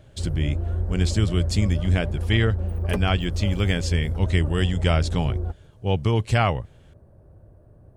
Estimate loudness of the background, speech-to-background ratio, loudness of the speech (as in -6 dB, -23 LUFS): -28.0 LUFS, 3.5 dB, -24.5 LUFS